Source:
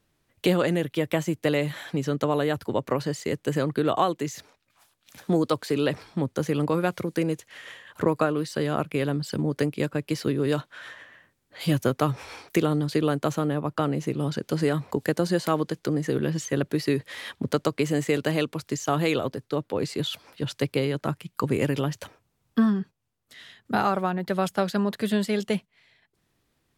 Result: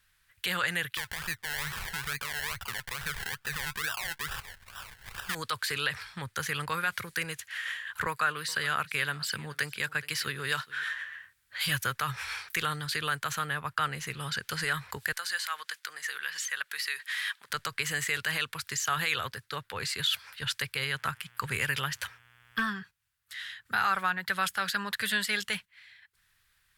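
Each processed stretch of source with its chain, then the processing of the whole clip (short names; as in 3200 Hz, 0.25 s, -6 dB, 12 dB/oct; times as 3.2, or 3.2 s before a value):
0.97–5.35 upward compressor, threshold -28 dBFS + decimation with a swept rate 29×, swing 60% 2.3 Hz
8.06–10.84 HPF 120 Hz + echo 0.421 s -21.5 dB
15.12–17.5 HPF 930 Hz + compressor 1.5:1, threshold -39 dBFS
20.78–22.78 buzz 120 Hz, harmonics 29, -59 dBFS -5 dB/oct + hard clip -12.5 dBFS
whole clip: passive tone stack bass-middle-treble 10-0-10; limiter -25.5 dBFS; fifteen-band EQ 160 Hz -3 dB, 630 Hz -8 dB, 1600 Hz +9 dB, 6300 Hz -4 dB; gain +7.5 dB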